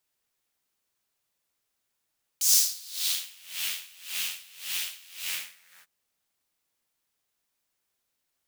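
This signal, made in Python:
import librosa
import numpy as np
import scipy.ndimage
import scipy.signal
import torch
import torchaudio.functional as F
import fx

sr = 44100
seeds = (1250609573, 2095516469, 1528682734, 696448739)

y = fx.sub_patch_tremolo(sr, seeds[0], note=53, wave='triangle', wave2='saw', interval_st=-12, detune_cents=12, level2_db=-9.0, sub_db=-15.0, noise_db=-13.5, kind='highpass', cutoff_hz=1600.0, q=2.4, env_oct=2.0, env_decay_s=1.0, env_sustain_pct=40, attack_ms=1.9, decay_s=0.81, sustain_db=-12.0, release_s=0.64, note_s=2.81, lfo_hz=1.8, tremolo_db=23.0)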